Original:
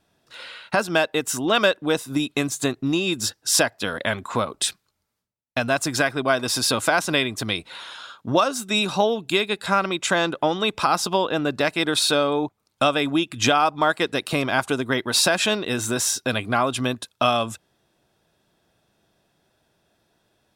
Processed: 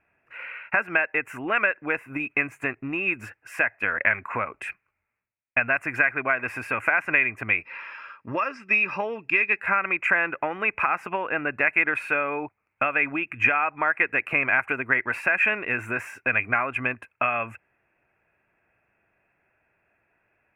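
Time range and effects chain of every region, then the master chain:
0:07.61–0:09.58: low-pass with resonance 5,100 Hz, resonance Q 16 + notch comb filter 730 Hz
whole clip: dynamic equaliser 1,800 Hz, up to +6 dB, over −35 dBFS, Q 1.9; downward compressor 4 to 1, threshold −19 dBFS; drawn EQ curve 110 Hz 0 dB, 160 Hz −5 dB, 1,100 Hz +4 dB, 2,500 Hz +14 dB, 3,600 Hz −29 dB, 13,000 Hz −16 dB; level −5.5 dB

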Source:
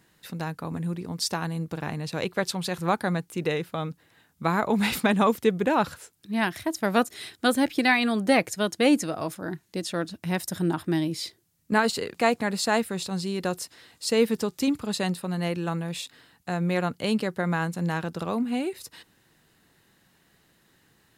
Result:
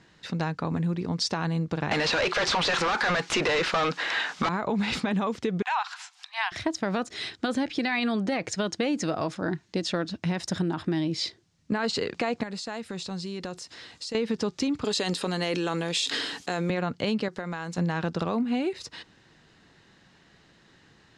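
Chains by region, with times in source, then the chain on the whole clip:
0:01.91–0:04.49: high-pass filter 870 Hz 6 dB per octave + mid-hump overdrive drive 39 dB, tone 3,300 Hz, clips at −12 dBFS
0:05.62–0:06.52: upward compression, threshold −32 dBFS + Chebyshev high-pass with heavy ripple 730 Hz, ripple 3 dB
0:12.43–0:14.15: high-shelf EQ 7,100 Hz +9.5 dB + downward compressor 10 to 1, threshold −36 dBFS
0:14.84–0:16.70: RIAA equalisation recording + hollow resonant body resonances 290/420/3,200 Hz, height 11 dB + level that may fall only so fast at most 44 dB per second
0:17.28–0:17.78: bass and treble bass −6 dB, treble +7 dB + downward compressor 10 to 1, threshold −34 dBFS
whole clip: low-pass filter 6,300 Hz 24 dB per octave; brickwall limiter −19.5 dBFS; downward compressor, threshold −29 dBFS; level +5.5 dB

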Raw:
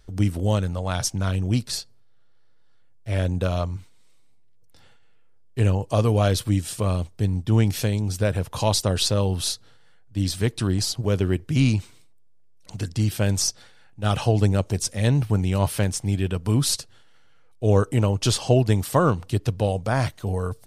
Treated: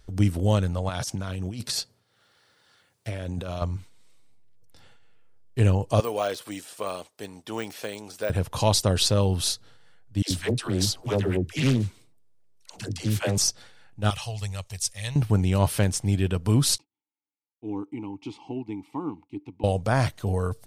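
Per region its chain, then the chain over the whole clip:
0:00.89–0:03.62: high-pass filter 120 Hz 6 dB per octave + compressor whose output falls as the input rises −31 dBFS + one half of a high-frequency compander encoder only
0:06.00–0:08.30: de-essing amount 95% + high-pass filter 510 Hz + high-shelf EQ 12,000 Hz +4.5 dB
0:10.22–0:13.38: low-shelf EQ 150 Hz −6 dB + all-pass dispersion lows, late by 87 ms, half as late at 470 Hz + highs frequency-modulated by the lows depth 0.48 ms
0:14.10–0:15.16: notch filter 1,500 Hz, Q 6.6 + downward expander −38 dBFS + guitar amp tone stack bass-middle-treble 10-0-10
0:16.78–0:19.64: downward expander −38 dBFS + formant filter u
whole clip: no processing

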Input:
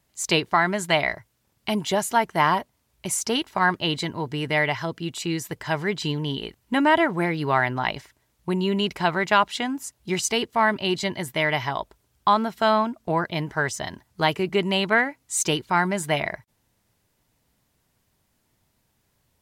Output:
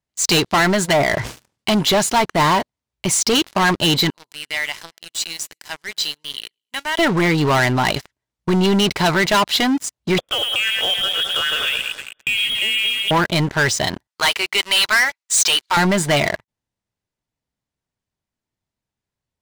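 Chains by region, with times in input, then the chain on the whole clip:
0:00.89–0:01.72: high-pass filter 91 Hz 6 dB per octave + treble cut that deepens with the level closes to 1,300 Hz, closed at −17 dBFS + level that may fall only so fast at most 74 dB per second
0:04.10–0:06.99: first difference + repeating echo 108 ms, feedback 50%, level −23 dB
0:10.18–0:13.11: delay that swaps between a low-pass and a high-pass 104 ms, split 2,000 Hz, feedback 59%, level −8 dB + downward compressor 4 to 1, threshold −31 dBFS + voice inversion scrambler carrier 3,500 Hz
0:14.07–0:15.77: high-pass filter 1,200 Hz + leveller curve on the samples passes 1
whole clip: low-pass filter 8,100 Hz; dynamic equaliser 4,100 Hz, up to +7 dB, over −44 dBFS, Q 2.1; leveller curve on the samples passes 5; level −6 dB

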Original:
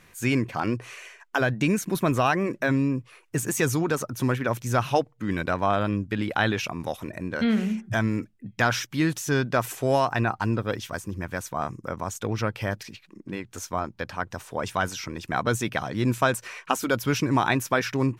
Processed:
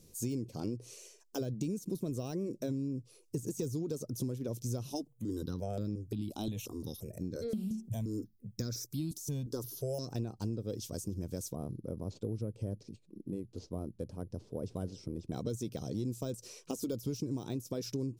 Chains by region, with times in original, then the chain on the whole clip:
0:04.90–0:10.08: high-shelf EQ 8,100 Hz +7.5 dB + step-sequenced phaser 5.7 Hz 490–3,000 Hz
0:11.55–0:15.32: bad sample-rate conversion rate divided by 4×, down none, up zero stuff + head-to-tape spacing loss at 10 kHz 38 dB
whole clip: de-essing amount 70%; drawn EQ curve 480 Hz 0 dB, 770 Hz −16 dB, 1,800 Hz −28 dB, 5,100 Hz +2 dB; downward compressor, threshold −31 dBFS; level −2 dB

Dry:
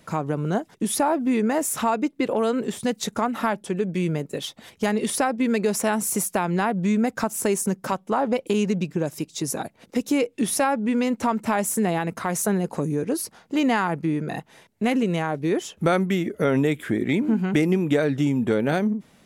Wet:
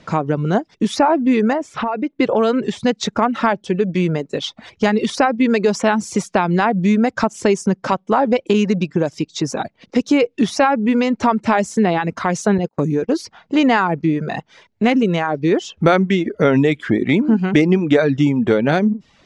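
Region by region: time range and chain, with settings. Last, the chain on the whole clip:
0:01.53–0:02.19: bass and treble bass −3 dB, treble −14 dB + downward compressor, threshold −23 dBFS
0:12.58–0:13.17: noise gate −30 dBFS, range −30 dB + low-pass filter 12,000 Hz
whole clip: low-pass filter 5,900 Hz 24 dB per octave; reverb reduction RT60 0.55 s; level +7.5 dB

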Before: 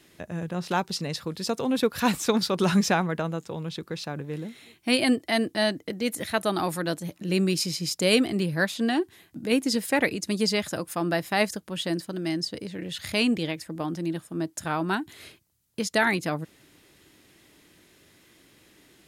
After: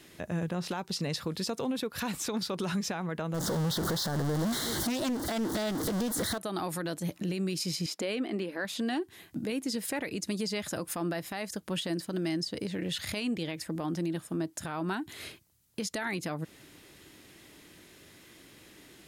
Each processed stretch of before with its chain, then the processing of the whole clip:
0:03.34–0:06.38: converter with a step at zero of −23.5 dBFS + Butterworth band-reject 2,500 Hz, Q 1.5 + highs frequency-modulated by the lows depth 0.4 ms
0:07.86–0:08.65: linear-phase brick-wall high-pass 190 Hz + bass and treble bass −2 dB, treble −12 dB
whole clip: downward compressor 4 to 1, threshold −31 dBFS; brickwall limiter −27 dBFS; level +3 dB

